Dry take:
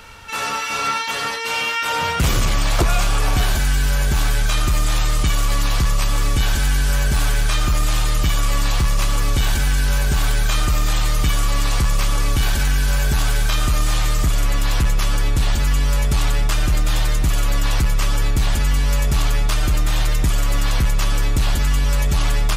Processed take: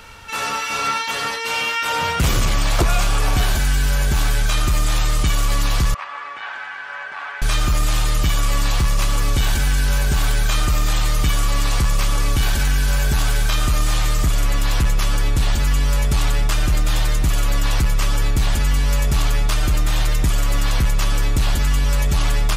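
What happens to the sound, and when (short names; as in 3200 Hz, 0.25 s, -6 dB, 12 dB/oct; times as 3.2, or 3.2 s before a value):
5.94–7.42 Butterworth band-pass 1300 Hz, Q 0.96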